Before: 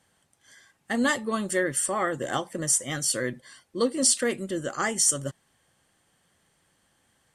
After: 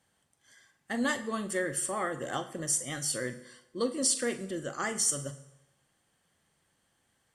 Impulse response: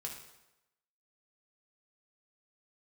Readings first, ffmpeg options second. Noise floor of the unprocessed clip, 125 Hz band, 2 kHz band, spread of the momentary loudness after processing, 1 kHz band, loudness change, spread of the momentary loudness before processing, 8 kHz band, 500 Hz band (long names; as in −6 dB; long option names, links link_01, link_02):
−69 dBFS, −5.0 dB, −5.5 dB, 11 LU, −5.5 dB, −5.5 dB, 10 LU, −5.5 dB, −5.5 dB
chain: -filter_complex "[0:a]asplit=2[link_01][link_02];[1:a]atrim=start_sample=2205,adelay=42[link_03];[link_02][link_03]afir=irnorm=-1:irlink=0,volume=-8.5dB[link_04];[link_01][link_04]amix=inputs=2:normalize=0,volume=-6dB"